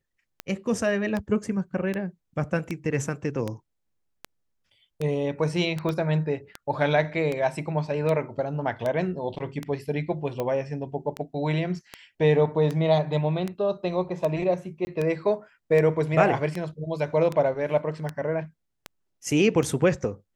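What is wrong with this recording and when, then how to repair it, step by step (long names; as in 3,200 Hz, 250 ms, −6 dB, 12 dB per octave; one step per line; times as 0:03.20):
scratch tick 78 rpm −16 dBFS
0:05.89: click −17 dBFS
0:14.85–0:14.87: drop-out 20 ms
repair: click removal
repair the gap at 0:14.85, 20 ms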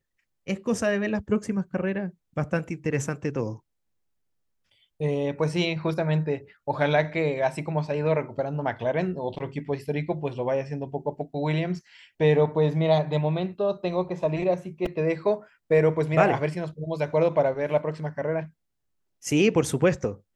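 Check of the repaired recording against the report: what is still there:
0:05.89: click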